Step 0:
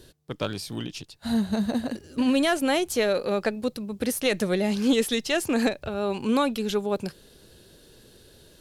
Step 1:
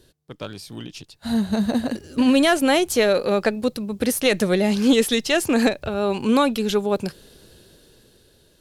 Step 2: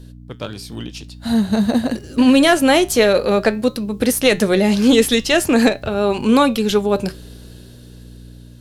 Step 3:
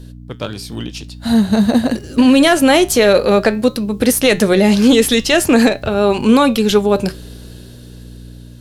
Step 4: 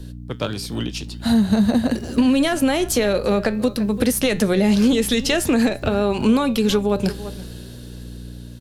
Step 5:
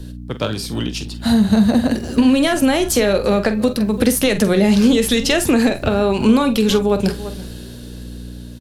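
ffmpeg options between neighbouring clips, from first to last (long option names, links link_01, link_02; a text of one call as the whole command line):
ffmpeg -i in.wav -af "dynaudnorm=framelen=280:gausssize=9:maxgain=12dB,volume=-4.5dB" out.wav
ffmpeg -i in.wav -af "aeval=exprs='val(0)+0.01*(sin(2*PI*60*n/s)+sin(2*PI*2*60*n/s)/2+sin(2*PI*3*60*n/s)/3+sin(2*PI*4*60*n/s)/4+sin(2*PI*5*60*n/s)/5)':channel_layout=same,flanger=delay=7.8:depth=1.4:regen=-80:speed=0.49:shape=sinusoidal,volume=9dB" out.wav
ffmpeg -i in.wav -af "alimiter=level_in=5dB:limit=-1dB:release=50:level=0:latency=1,volume=-1dB" out.wav
ffmpeg -i in.wav -filter_complex "[0:a]asplit=2[link_01][link_02];[link_02]adelay=338.2,volume=-20dB,highshelf=frequency=4000:gain=-7.61[link_03];[link_01][link_03]amix=inputs=2:normalize=0,acrossover=split=170[link_04][link_05];[link_05]acompressor=threshold=-17dB:ratio=6[link_06];[link_04][link_06]amix=inputs=2:normalize=0" out.wav
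ffmpeg -i in.wav -filter_complex "[0:a]asplit=2[link_01][link_02];[link_02]adelay=46,volume=-11.5dB[link_03];[link_01][link_03]amix=inputs=2:normalize=0,volume=3dB" out.wav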